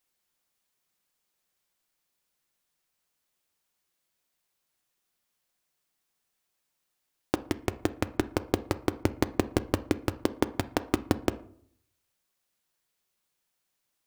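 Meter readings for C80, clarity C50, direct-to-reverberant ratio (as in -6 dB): 21.5 dB, 17.5 dB, 11.5 dB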